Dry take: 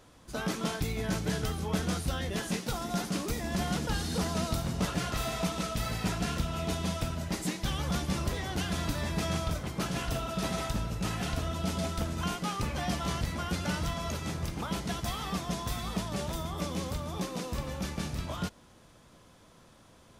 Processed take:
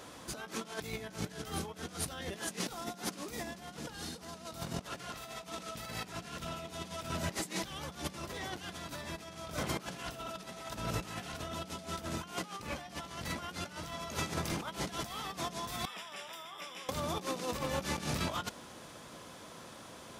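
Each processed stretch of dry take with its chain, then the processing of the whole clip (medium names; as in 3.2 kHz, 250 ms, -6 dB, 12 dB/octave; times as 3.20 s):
15.85–16.89 s: Savitzky-Golay filter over 25 samples + differentiator
whole clip: high-pass 260 Hz 6 dB/octave; compressor with a negative ratio -42 dBFS, ratio -0.5; trim +3 dB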